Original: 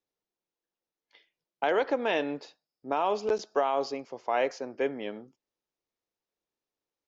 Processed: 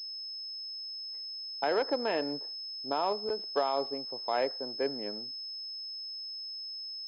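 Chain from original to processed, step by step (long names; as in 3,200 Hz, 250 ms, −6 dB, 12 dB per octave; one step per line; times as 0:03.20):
adaptive Wiener filter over 15 samples
0:03.12–0:03.57: downward compressor 1.5 to 1, threshold −34 dBFS, peak gain reduction 4.5 dB
switching amplifier with a slow clock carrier 5,200 Hz
level −2.5 dB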